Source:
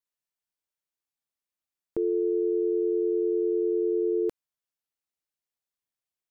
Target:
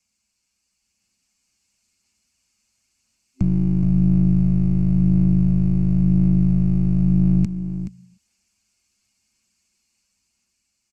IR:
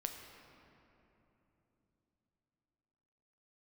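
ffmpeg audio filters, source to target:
-filter_complex "[0:a]aecho=1:1:3.9:0.65,asplit=2[a][b];[1:a]atrim=start_sample=2205,afade=t=out:st=0.22:d=0.01,atrim=end_sample=10143[c];[b][c]afir=irnorm=-1:irlink=0,volume=-17.5dB[d];[a][d]amix=inputs=2:normalize=0,asetrate=25442,aresample=44100,dynaudnorm=f=250:g=9:m=4dB,afreqshift=-72,acompressor=threshold=-47dB:ratio=1.5,aeval=exprs='clip(val(0),-1,0.00631)':c=same,lowshelf=f=260:t=q:w=3:g=7.5,aphaser=in_gain=1:out_gain=1:delay=2.5:decay=0.2:speed=0.96:type=sinusoidal,superequalizer=6b=2.82:12b=2.82:14b=3.55:15b=3.98,aecho=1:1:425:0.299,volume=6dB"

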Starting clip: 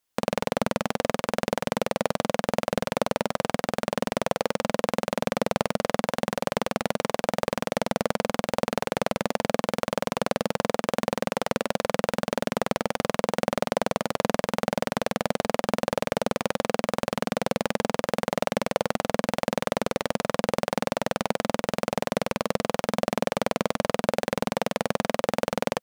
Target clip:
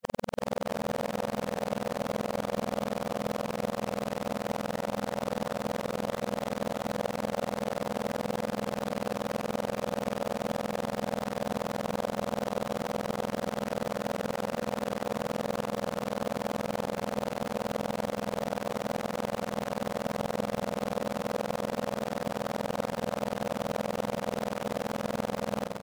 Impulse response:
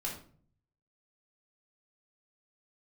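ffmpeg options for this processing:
-filter_complex "[0:a]areverse,asoftclip=type=hard:threshold=-12dB,asplit=2[a][b];[b]aecho=0:1:370|647.5|855.6|1012|1129:0.631|0.398|0.251|0.158|0.1[c];[a][c]amix=inputs=2:normalize=0,volume=-6.5dB"

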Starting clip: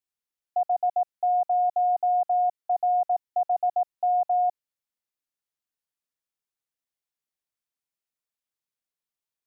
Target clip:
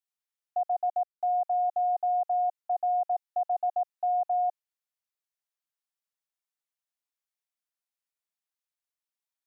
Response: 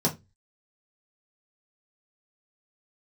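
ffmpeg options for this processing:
-filter_complex "[0:a]asplit=3[a][b][c];[a]afade=t=out:st=0.9:d=0.02[d];[b]aeval=exprs='val(0)*gte(abs(val(0)),0.00282)':c=same,afade=t=in:st=0.9:d=0.02,afade=t=out:st=1.42:d=0.02[e];[c]afade=t=in:st=1.42:d=0.02[f];[d][e][f]amix=inputs=3:normalize=0,highpass=f=580:w=0.5412,highpass=f=580:w=1.3066,volume=-3dB"

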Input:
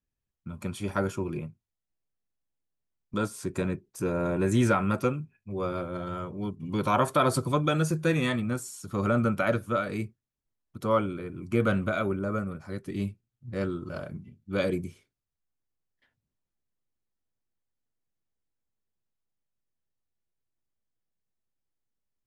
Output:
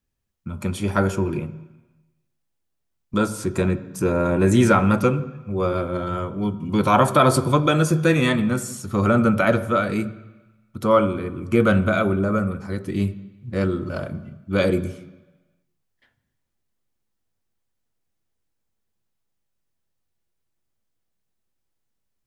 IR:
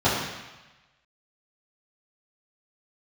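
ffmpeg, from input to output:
-filter_complex "[0:a]asplit=2[a][b];[1:a]atrim=start_sample=2205,adelay=6[c];[b][c]afir=irnorm=-1:irlink=0,volume=-30dB[d];[a][d]amix=inputs=2:normalize=0,volume=7.5dB"

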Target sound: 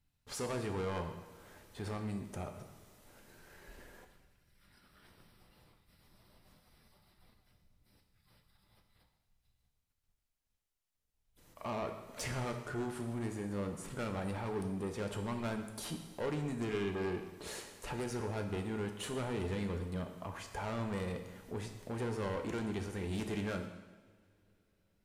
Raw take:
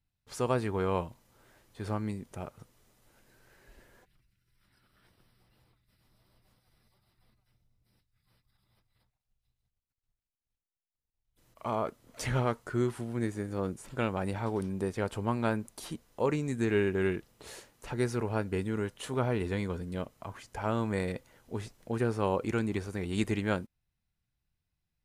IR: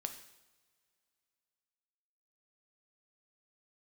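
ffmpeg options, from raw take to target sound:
-filter_complex "[0:a]asplit=2[a][b];[b]acompressor=threshold=-45dB:ratio=6,volume=2dB[c];[a][c]amix=inputs=2:normalize=0,asoftclip=type=tanh:threshold=-30dB[d];[1:a]atrim=start_sample=2205,asetrate=30870,aresample=44100[e];[d][e]afir=irnorm=-1:irlink=0,volume=-3dB"

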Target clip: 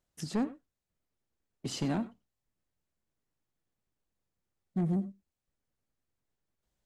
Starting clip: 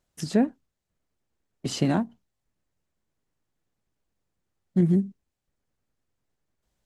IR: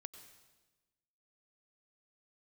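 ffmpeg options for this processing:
-filter_complex "[0:a]asoftclip=type=tanh:threshold=-18.5dB[a];[1:a]atrim=start_sample=2205,afade=t=out:st=0.15:d=0.01,atrim=end_sample=7056[b];[a][b]afir=irnorm=-1:irlink=0"

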